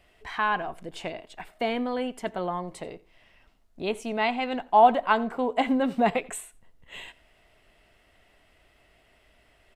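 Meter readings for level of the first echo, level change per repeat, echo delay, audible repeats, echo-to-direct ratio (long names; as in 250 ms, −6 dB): −22.5 dB, repeats not evenly spaced, 87 ms, 1, −22.5 dB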